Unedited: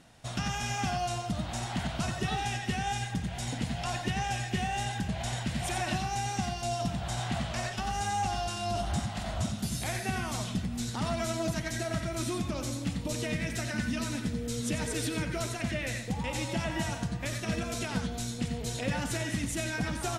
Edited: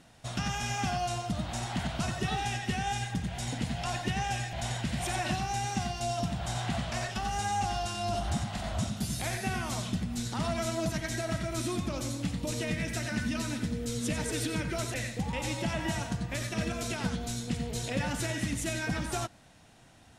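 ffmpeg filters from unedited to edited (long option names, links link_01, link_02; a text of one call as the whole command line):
ffmpeg -i in.wav -filter_complex "[0:a]asplit=3[link_01][link_02][link_03];[link_01]atrim=end=4.532[link_04];[link_02]atrim=start=5.148:end=15.562[link_05];[link_03]atrim=start=15.848[link_06];[link_04][link_05]acrossfade=duration=0.004:curve1=hsin:curve2=hsin[link_07];[link_07][link_06]acrossfade=duration=0.004:curve1=hsin:curve2=hsin" out.wav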